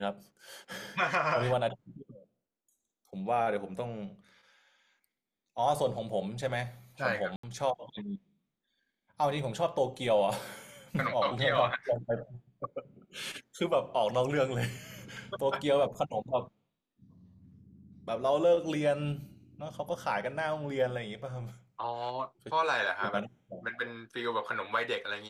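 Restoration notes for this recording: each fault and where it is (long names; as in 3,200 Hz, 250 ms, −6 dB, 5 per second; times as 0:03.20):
0:07.36–0:07.43: drop-out 74 ms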